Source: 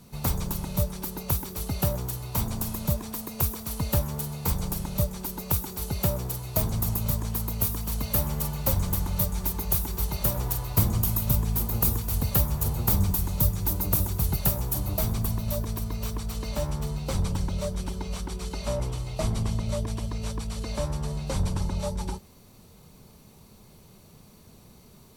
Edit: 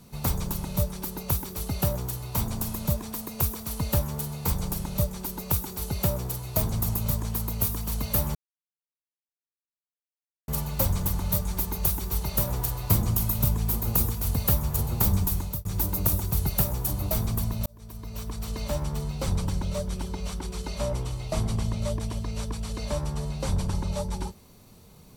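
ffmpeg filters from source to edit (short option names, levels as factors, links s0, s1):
-filter_complex "[0:a]asplit=4[s0][s1][s2][s3];[s0]atrim=end=8.35,asetpts=PTS-STARTPTS,afade=t=out:st=8.346:d=0.004:c=hsin,apad=pad_dur=2.13[s4];[s1]atrim=start=8.35:end=13.52,asetpts=PTS-STARTPTS,afade=t=in:d=0.004:c=hsin,afade=t=out:st=4.9:d=0.27[s5];[s2]atrim=start=13.52:end=15.53,asetpts=PTS-STARTPTS,afade=t=in:d=0.004:c=hsin,afade=t=out:st=2.006:d=0.004:c=hsin[s6];[s3]atrim=start=15.53,asetpts=PTS-STARTPTS,afade=t=in:d=0.86[s7];[s4][s5][s6][s7]concat=n=4:v=0:a=1"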